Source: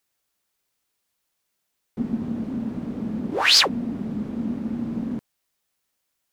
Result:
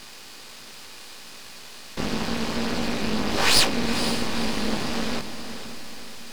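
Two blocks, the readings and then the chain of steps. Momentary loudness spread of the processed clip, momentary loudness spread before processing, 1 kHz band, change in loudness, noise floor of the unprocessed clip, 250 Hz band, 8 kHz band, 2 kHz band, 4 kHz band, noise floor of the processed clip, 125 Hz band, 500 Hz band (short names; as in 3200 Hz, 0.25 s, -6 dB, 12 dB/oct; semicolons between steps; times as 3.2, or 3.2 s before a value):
22 LU, 16 LU, +2.5 dB, -1.5 dB, -77 dBFS, -1.5 dB, +2.5 dB, 0.0 dB, -2.0 dB, -42 dBFS, +0.5 dB, +4.5 dB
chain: per-bin compression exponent 0.4; chorus voices 2, 0.74 Hz, delay 18 ms, depth 1.4 ms; half-wave rectifier; on a send: diffused feedback echo 0.495 s, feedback 44%, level -10 dB; on the sum: gain +1.5 dB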